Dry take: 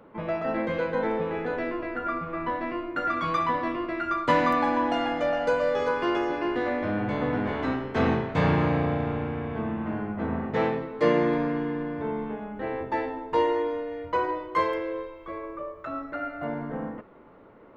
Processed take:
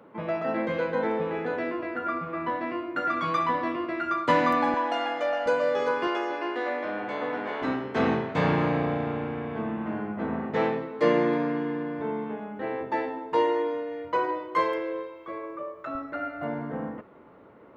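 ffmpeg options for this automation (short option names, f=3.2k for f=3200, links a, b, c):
-af "asetnsamples=n=441:p=0,asendcmd='4.74 highpass f 450;5.46 highpass f 180;6.07 highpass f 420;7.62 highpass f 150;15.95 highpass f 65',highpass=120"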